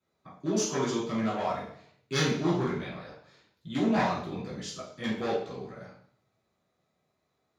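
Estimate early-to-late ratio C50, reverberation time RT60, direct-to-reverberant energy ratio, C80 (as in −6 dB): 2.5 dB, 0.60 s, −11.0 dB, 7.0 dB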